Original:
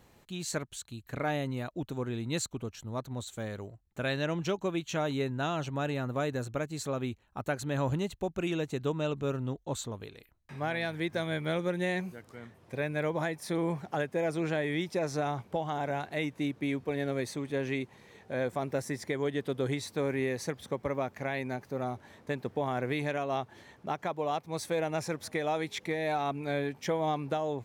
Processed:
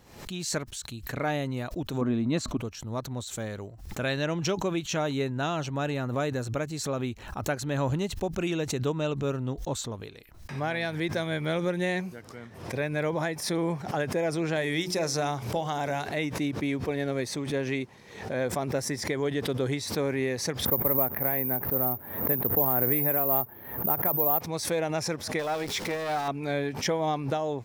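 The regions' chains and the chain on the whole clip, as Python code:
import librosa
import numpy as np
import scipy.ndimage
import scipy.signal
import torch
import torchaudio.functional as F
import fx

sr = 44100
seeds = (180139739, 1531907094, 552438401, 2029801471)

y = fx.chain(x, sr, fx.lowpass(hz=2600.0, slope=6),
    fx.small_body(hz=(250.0, 630.0, 1100.0), ring_ms=35, db=10), at=(2.01, 2.57))
y = fx.chain(y, sr, fx.high_shelf(hz=3900.0, db=9.5),
    fx.hum_notches(base_hz=60, count=9), at=(14.56, 16.09))
y = fx.chain(y, sr, fx.lowpass(hz=1600.0, slope=12),
    fx.resample_bad(factor=3, down='none', up='zero_stuff'), at=(20.65, 24.41))
y = fx.chain(y, sr, fx.zero_step(step_db=-36.5),
    fx.transformer_sat(knee_hz=820.0), at=(25.39, 26.28))
y = fx.peak_eq(y, sr, hz=5300.0, db=6.0, octaves=0.36)
y = fx.pre_swell(y, sr, db_per_s=80.0)
y = y * 10.0 ** (2.5 / 20.0)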